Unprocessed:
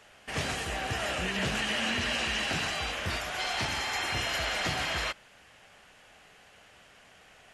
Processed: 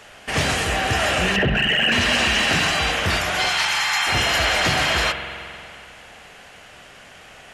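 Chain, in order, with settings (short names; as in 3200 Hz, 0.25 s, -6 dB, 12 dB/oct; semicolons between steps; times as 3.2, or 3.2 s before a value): 1.36–1.92 formant sharpening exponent 3; 3.49–4.07 HPF 870 Hz 24 dB/oct; in parallel at -3 dB: hard clip -28 dBFS, distortion -14 dB; on the sum: spring tank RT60 2.6 s, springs 45 ms, chirp 80 ms, DRR 7.5 dB; gain +7 dB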